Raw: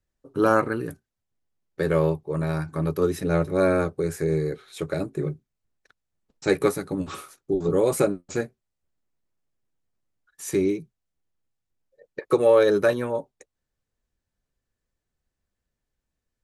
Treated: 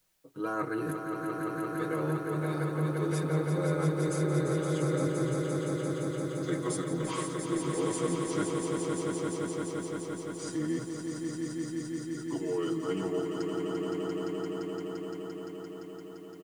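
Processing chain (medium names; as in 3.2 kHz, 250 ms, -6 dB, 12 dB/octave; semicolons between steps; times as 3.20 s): pitch bend over the whole clip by -5.5 st starting unshifted; bass shelf 96 Hz -11.5 dB; band-stop 5.5 kHz, Q 14; comb 6.3 ms, depth 85%; reverse; compression 6:1, threshold -33 dBFS, peak gain reduction 20 dB; reverse; added noise white -76 dBFS; on a send: echo with a slow build-up 172 ms, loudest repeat 5, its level -6 dB; on the sum: trim +1.5 dB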